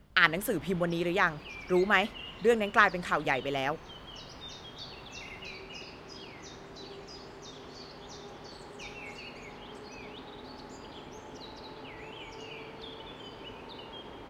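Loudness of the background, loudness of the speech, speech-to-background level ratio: -45.0 LUFS, -28.0 LUFS, 17.0 dB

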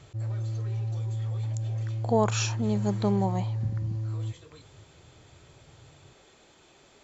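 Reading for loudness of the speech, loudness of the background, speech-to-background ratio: -29.5 LUFS, -32.0 LUFS, 2.5 dB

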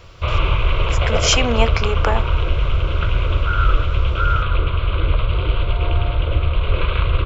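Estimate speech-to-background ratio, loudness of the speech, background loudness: -1.0 dB, -21.0 LUFS, -20.0 LUFS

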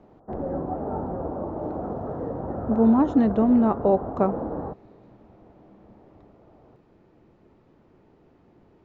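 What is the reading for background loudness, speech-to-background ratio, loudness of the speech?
-32.0 LUFS, 11.0 dB, -21.0 LUFS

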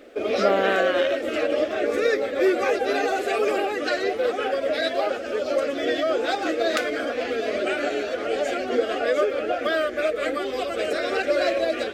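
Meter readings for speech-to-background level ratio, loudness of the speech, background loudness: -1.5 dB, -25.5 LUFS, -24.0 LUFS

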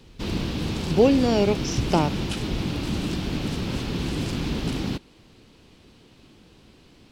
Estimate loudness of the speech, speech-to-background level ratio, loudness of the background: -22.5 LUFS, 6.0 dB, -28.5 LUFS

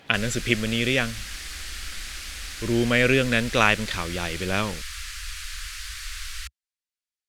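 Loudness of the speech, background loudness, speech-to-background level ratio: -23.5 LUFS, -34.5 LUFS, 11.0 dB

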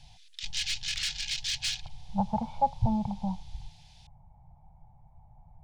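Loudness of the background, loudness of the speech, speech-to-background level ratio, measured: -31.5 LUFS, -31.5 LUFS, 0.0 dB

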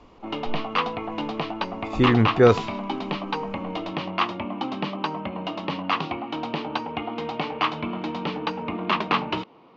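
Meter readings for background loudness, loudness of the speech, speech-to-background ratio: -28.5 LUFS, -19.5 LUFS, 9.0 dB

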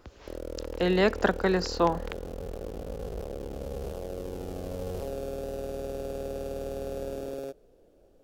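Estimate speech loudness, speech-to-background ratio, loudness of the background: -26.5 LUFS, 11.0 dB, -37.5 LUFS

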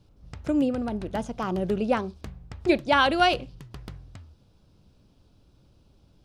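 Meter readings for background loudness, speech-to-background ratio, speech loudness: -44.0 LUFS, 18.5 dB, -25.5 LUFS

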